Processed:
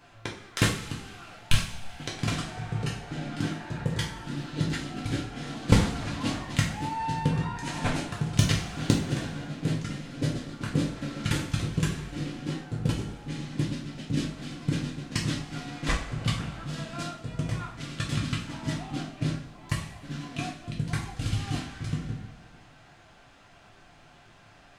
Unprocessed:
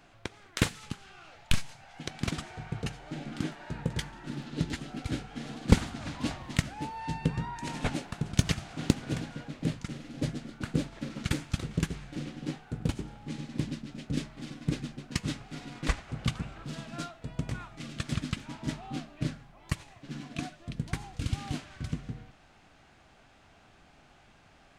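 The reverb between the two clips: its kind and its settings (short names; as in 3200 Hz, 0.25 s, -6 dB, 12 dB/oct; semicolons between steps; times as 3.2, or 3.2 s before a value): two-slope reverb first 0.4 s, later 2.3 s, from -19 dB, DRR -3 dB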